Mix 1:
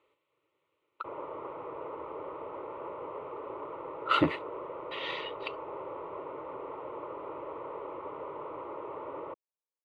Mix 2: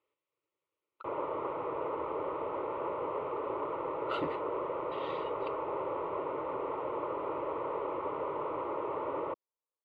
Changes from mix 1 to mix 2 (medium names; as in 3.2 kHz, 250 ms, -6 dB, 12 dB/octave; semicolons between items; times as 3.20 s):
speech -12.0 dB; background +5.0 dB